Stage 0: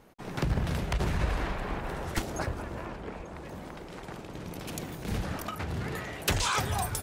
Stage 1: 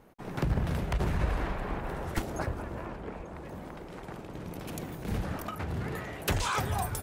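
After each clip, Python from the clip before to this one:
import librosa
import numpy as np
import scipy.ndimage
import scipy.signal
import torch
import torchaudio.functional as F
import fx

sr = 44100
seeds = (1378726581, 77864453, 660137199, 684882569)

y = fx.peak_eq(x, sr, hz=5200.0, db=-6.0, octaves=2.4)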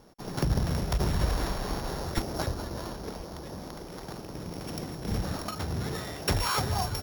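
y = np.r_[np.sort(x[:len(x) // 8 * 8].reshape(-1, 8), axis=1).ravel(), x[len(x) // 8 * 8:]]
y = y * librosa.db_to_amplitude(2.0)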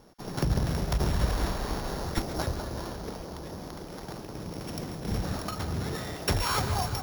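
y = fx.echo_split(x, sr, split_hz=1400.0, low_ms=204, high_ms=138, feedback_pct=52, wet_db=-11.0)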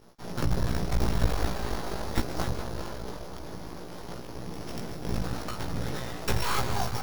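y = fx.tracing_dist(x, sr, depth_ms=0.15)
y = np.maximum(y, 0.0)
y = fx.doubler(y, sr, ms=17.0, db=-2.5)
y = y * librosa.db_to_amplitude(1.5)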